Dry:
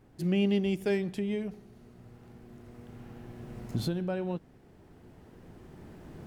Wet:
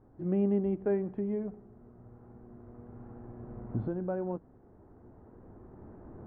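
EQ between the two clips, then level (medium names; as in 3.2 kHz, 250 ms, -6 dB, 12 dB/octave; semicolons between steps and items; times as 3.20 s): low-pass 1.3 kHz 24 dB/octave; peaking EQ 160 Hz -10 dB 0.26 oct; 0.0 dB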